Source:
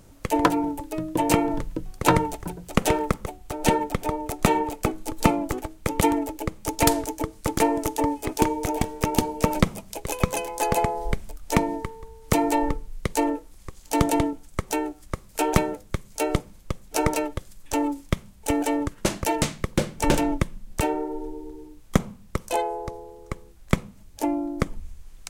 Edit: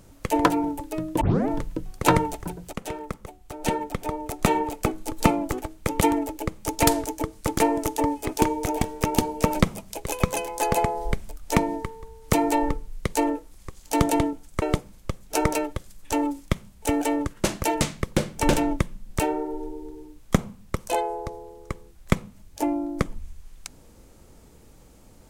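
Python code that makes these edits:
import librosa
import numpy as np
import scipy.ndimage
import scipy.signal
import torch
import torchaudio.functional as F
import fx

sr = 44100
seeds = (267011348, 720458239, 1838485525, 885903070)

y = fx.edit(x, sr, fx.tape_start(start_s=1.21, length_s=0.27),
    fx.fade_in_from(start_s=2.73, length_s=2.03, floor_db=-14.0),
    fx.cut(start_s=14.62, length_s=1.61), tone=tone)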